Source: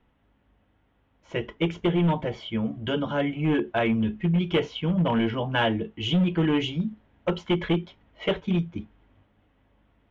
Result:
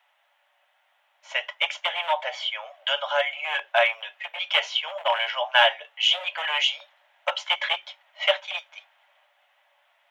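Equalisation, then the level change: rippled Chebyshev high-pass 570 Hz, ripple 3 dB; treble shelf 2.5 kHz +9 dB; +6.0 dB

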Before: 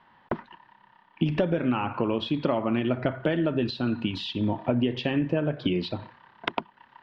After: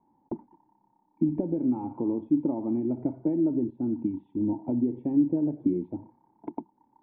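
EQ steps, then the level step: cascade formant filter u; +5.5 dB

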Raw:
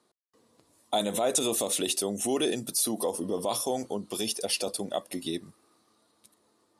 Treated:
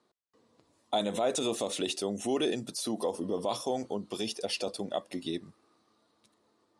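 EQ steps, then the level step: low-pass 12 kHz 12 dB/octave; distance through air 70 m; -1.5 dB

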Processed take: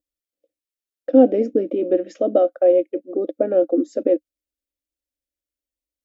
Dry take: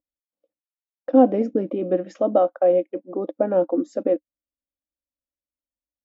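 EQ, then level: bass shelf 320 Hz +3 dB; static phaser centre 400 Hz, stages 4; +3.5 dB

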